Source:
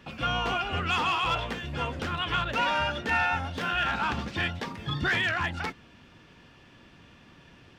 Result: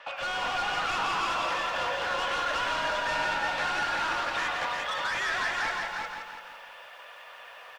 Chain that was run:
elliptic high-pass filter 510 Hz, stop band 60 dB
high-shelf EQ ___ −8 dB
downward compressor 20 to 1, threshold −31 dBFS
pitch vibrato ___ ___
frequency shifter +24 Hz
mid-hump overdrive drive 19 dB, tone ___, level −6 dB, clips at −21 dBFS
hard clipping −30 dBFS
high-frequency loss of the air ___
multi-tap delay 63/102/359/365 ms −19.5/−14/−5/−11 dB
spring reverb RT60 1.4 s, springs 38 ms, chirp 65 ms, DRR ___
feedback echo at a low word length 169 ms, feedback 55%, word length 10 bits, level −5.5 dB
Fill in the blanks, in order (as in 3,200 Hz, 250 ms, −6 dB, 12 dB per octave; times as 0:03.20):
2,100 Hz, 1.2 Hz, 9.1 cents, 4,900 Hz, 56 metres, 10.5 dB